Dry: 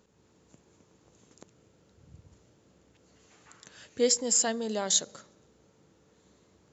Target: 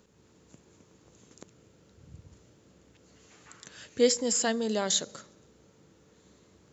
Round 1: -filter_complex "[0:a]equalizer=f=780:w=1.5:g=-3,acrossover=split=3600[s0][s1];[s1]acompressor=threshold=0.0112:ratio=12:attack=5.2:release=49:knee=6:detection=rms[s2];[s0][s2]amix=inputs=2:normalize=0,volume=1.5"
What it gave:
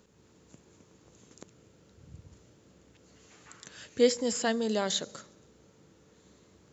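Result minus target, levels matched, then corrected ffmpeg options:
compression: peak gain reduction +9 dB
-filter_complex "[0:a]equalizer=f=780:w=1.5:g=-3,acrossover=split=3600[s0][s1];[s1]acompressor=threshold=0.0355:ratio=12:attack=5.2:release=49:knee=6:detection=rms[s2];[s0][s2]amix=inputs=2:normalize=0,volume=1.5"

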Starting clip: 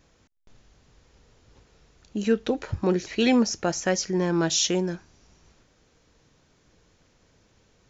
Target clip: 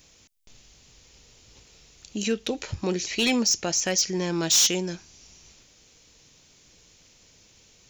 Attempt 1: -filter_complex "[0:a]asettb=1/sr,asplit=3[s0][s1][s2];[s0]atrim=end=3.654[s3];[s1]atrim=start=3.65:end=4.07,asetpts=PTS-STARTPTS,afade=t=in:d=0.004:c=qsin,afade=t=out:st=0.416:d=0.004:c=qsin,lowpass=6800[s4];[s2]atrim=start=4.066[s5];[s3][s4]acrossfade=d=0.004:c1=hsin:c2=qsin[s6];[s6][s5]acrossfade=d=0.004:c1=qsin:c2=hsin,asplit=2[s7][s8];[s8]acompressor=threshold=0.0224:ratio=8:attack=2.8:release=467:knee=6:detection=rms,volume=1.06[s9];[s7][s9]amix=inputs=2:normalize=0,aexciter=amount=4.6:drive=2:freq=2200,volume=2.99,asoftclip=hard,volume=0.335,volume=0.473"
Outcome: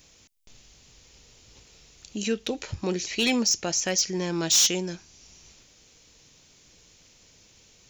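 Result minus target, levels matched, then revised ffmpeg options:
compression: peak gain reduction +5.5 dB
-filter_complex "[0:a]asettb=1/sr,asplit=3[s0][s1][s2];[s0]atrim=end=3.654[s3];[s1]atrim=start=3.65:end=4.07,asetpts=PTS-STARTPTS,afade=t=in:d=0.004:c=qsin,afade=t=out:st=0.416:d=0.004:c=qsin,lowpass=6800[s4];[s2]atrim=start=4.066[s5];[s3][s4]acrossfade=d=0.004:c1=hsin:c2=qsin[s6];[s6][s5]acrossfade=d=0.004:c1=qsin:c2=hsin,asplit=2[s7][s8];[s8]acompressor=threshold=0.0473:ratio=8:attack=2.8:release=467:knee=6:detection=rms,volume=1.06[s9];[s7][s9]amix=inputs=2:normalize=0,aexciter=amount=4.6:drive=2:freq=2200,volume=2.99,asoftclip=hard,volume=0.335,volume=0.473"

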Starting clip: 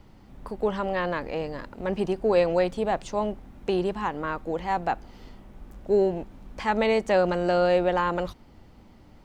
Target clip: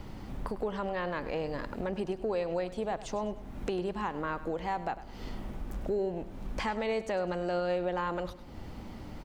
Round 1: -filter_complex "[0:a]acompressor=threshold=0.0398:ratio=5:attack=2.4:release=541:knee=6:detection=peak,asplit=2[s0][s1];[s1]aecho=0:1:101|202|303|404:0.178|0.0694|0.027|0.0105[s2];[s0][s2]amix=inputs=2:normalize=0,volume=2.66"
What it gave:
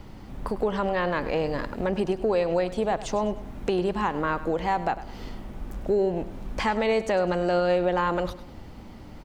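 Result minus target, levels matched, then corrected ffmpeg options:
compression: peak gain reduction -8 dB
-filter_complex "[0:a]acompressor=threshold=0.0126:ratio=5:attack=2.4:release=541:knee=6:detection=peak,asplit=2[s0][s1];[s1]aecho=0:1:101|202|303|404:0.178|0.0694|0.027|0.0105[s2];[s0][s2]amix=inputs=2:normalize=0,volume=2.66"

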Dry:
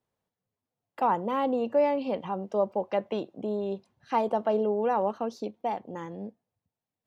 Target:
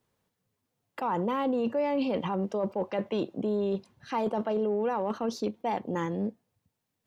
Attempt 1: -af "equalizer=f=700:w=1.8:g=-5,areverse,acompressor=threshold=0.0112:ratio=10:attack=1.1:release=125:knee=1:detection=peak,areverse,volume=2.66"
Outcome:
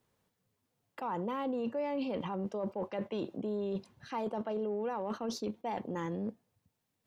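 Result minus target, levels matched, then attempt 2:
compression: peak gain reduction +7 dB
-af "equalizer=f=700:w=1.8:g=-5,areverse,acompressor=threshold=0.0266:ratio=10:attack=1.1:release=125:knee=1:detection=peak,areverse,volume=2.66"

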